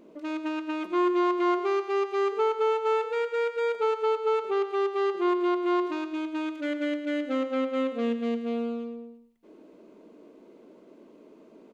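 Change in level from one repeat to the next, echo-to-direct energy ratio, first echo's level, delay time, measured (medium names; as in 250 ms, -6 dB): -8.5 dB, -10.0 dB, -10.5 dB, 112 ms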